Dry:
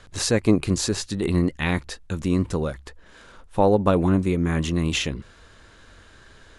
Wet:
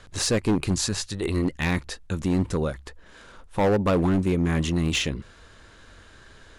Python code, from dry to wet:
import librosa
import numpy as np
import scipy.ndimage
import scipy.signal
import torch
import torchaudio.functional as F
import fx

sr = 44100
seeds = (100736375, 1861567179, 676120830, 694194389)

y = fx.peak_eq(x, sr, hz=fx.line((0.71, 530.0), (1.44, 140.0)), db=-10.0, octaves=0.92, at=(0.71, 1.44), fade=0.02)
y = np.clip(y, -10.0 ** (-16.5 / 20.0), 10.0 ** (-16.5 / 20.0))